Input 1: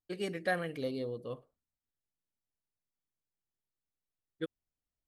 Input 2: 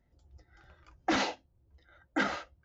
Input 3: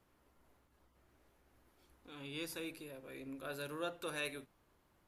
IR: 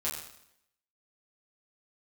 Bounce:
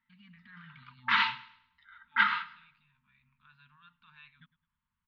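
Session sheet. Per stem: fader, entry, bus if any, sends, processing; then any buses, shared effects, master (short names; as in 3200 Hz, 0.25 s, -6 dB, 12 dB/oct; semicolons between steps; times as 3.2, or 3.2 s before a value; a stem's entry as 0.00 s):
-11.0 dB, 0.00 s, no send, echo send -19 dB, limiter -34 dBFS, peak gain reduction 14.5 dB
+1.5 dB, 0.00 s, no send, echo send -17.5 dB, HPF 480 Hz 12 dB/oct
-19.0 dB, 0.00 s, no send, no echo send, dry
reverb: off
echo: feedback echo 0.105 s, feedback 35%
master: steep low-pass 3700 Hz 36 dB/oct; FFT band-reject 250–880 Hz; AGC gain up to 6 dB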